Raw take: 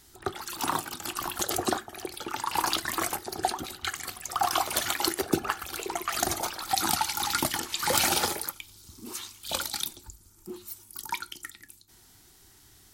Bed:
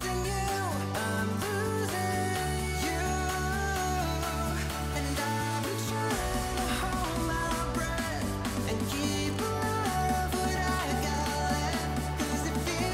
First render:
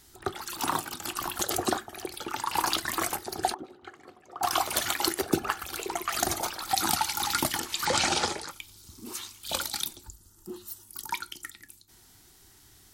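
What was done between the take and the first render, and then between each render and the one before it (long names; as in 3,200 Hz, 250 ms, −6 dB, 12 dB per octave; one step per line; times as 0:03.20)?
0:03.54–0:04.43: resonant band-pass 400 Hz, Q 1.4
0:07.85–0:08.51: low-pass filter 7,800 Hz 24 dB per octave
0:10.07–0:10.88: Butterworth band-reject 2,300 Hz, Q 5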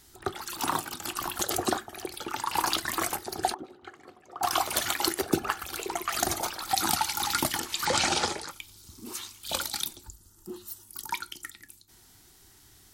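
no processing that can be heard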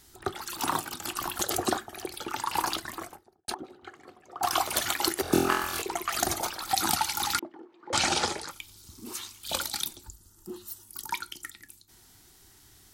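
0:02.45–0:03.48: fade out and dull
0:05.22–0:05.82: flutter between parallel walls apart 4 metres, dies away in 0.72 s
0:07.39–0:07.93: four-pole ladder band-pass 400 Hz, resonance 55%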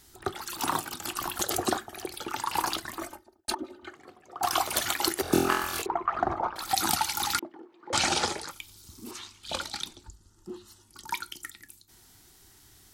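0:02.99–0:03.94: comb filter 3.3 ms, depth 98%
0:05.86–0:06.56: low-pass with resonance 1,100 Hz, resonance Q 2.1
0:09.11–0:11.08: high-frequency loss of the air 73 metres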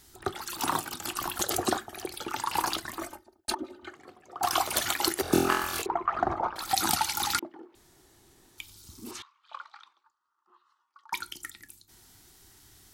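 0:07.75–0:08.58: fill with room tone
0:09.22–0:11.13: four-pole ladder band-pass 1,200 Hz, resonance 75%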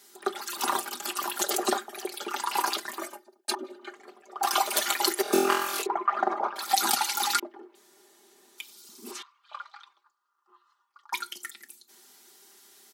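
high-pass filter 270 Hz 24 dB per octave
comb filter 5 ms, depth 72%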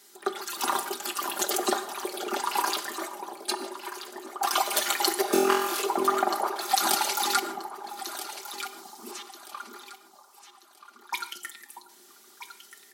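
delay that swaps between a low-pass and a high-pass 640 ms, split 830 Hz, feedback 54%, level −6 dB
reverb whose tail is shaped and stops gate 180 ms flat, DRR 11.5 dB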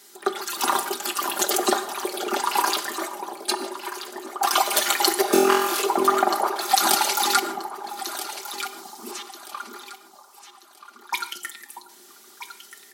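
level +5 dB
brickwall limiter −2 dBFS, peak gain reduction 1.5 dB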